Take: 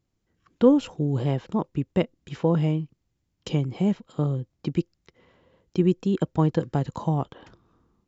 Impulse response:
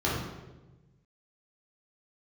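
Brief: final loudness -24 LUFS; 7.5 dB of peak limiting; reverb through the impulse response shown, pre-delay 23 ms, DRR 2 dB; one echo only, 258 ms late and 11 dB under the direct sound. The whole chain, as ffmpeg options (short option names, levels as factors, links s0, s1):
-filter_complex "[0:a]alimiter=limit=0.188:level=0:latency=1,aecho=1:1:258:0.282,asplit=2[s0][s1];[1:a]atrim=start_sample=2205,adelay=23[s2];[s1][s2]afir=irnorm=-1:irlink=0,volume=0.211[s3];[s0][s3]amix=inputs=2:normalize=0,volume=0.75"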